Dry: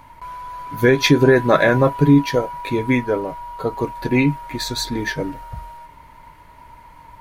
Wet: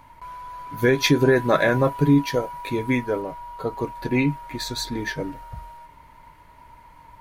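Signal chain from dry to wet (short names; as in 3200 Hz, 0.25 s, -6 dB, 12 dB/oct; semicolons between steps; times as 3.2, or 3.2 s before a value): 0.82–3.22 high shelf 6700 Hz +5.5 dB; gain -4.5 dB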